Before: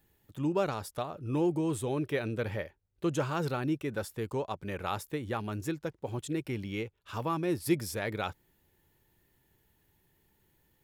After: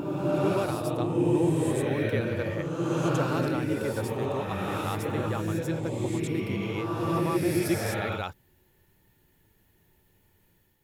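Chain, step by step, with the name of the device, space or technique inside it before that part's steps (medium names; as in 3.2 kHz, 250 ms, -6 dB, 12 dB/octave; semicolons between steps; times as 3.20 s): reverse reverb (reverse; reverberation RT60 2.3 s, pre-delay 72 ms, DRR -3 dB; reverse)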